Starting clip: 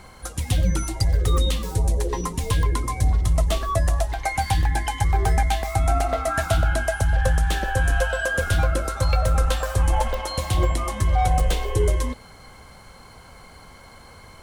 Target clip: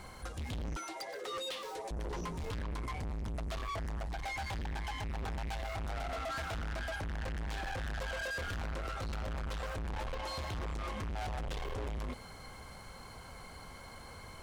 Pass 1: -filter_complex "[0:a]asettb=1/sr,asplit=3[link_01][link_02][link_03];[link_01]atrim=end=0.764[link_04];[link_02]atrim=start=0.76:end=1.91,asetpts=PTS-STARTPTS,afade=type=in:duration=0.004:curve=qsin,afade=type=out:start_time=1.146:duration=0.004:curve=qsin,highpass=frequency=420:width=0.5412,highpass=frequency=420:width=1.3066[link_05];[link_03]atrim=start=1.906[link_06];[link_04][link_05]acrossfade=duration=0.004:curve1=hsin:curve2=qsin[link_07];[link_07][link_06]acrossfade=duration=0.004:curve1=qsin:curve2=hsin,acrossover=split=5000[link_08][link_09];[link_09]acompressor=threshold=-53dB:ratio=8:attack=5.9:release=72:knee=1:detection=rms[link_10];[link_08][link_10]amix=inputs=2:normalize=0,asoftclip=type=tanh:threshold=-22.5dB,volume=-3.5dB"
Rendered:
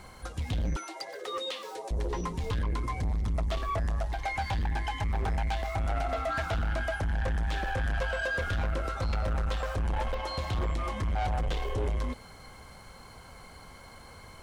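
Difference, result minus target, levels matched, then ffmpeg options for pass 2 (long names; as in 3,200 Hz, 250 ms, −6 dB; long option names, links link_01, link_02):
soft clipping: distortion −5 dB
-filter_complex "[0:a]asettb=1/sr,asplit=3[link_01][link_02][link_03];[link_01]atrim=end=0.764[link_04];[link_02]atrim=start=0.76:end=1.91,asetpts=PTS-STARTPTS,afade=type=in:duration=0.004:curve=qsin,afade=type=out:start_time=1.146:duration=0.004:curve=qsin,highpass=frequency=420:width=0.5412,highpass=frequency=420:width=1.3066[link_05];[link_03]atrim=start=1.906[link_06];[link_04][link_05]acrossfade=duration=0.004:curve1=hsin:curve2=qsin[link_07];[link_07][link_06]acrossfade=duration=0.004:curve1=qsin:curve2=hsin,acrossover=split=5000[link_08][link_09];[link_09]acompressor=threshold=-53dB:ratio=8:attack=5.9:release=72:knee=1:detection=rms[link_10];[link_08][link_10]amix=inputs=2:normalize=0,asoftclip=type=tanh:threshold=-33dB,volume=-3.5dB"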